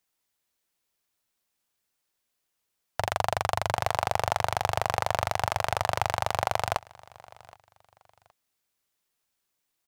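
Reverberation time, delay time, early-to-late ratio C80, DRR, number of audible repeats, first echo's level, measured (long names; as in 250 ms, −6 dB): no reverb audible, 770 ms, no reverb audible, no reverb audible, 2, −23.0 dB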